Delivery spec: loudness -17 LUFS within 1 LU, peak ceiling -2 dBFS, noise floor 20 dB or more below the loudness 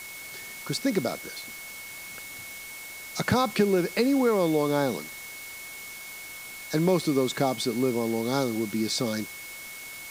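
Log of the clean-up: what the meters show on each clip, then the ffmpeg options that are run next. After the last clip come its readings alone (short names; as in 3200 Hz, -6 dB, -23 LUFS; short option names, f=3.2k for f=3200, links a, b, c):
steady tone 2200 Hz; tone level -41 dBFS; noise floor -41 dBFS; noise floor target -49 dBFS; loudness -28.5 LUFS; peak -10.5 dBFS; loudness target -17.0 LUFS
-> -af "bandreject=f=2.2k:w=30"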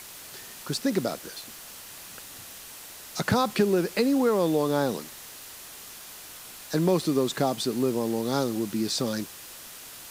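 steady tone none; noise floor -44 dBFS; noise floor target -47 dBFS
-> -af "afftdn=nr=6:nf=-44"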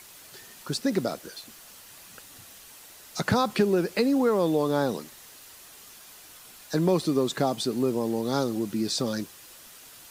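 noise floor -49 dBFS; loudness -26.5 LUFS; peak -10.5 dBFS; loudness target -17.0 LUFS
-> -af "volume=9.5dB,alimiter=limit=-2dB:level=0:latency=1"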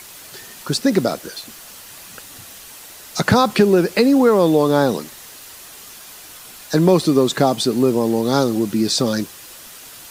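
loudness -17.0 LUFS; peak -2.0 dBFS; noise floor -40 dBFS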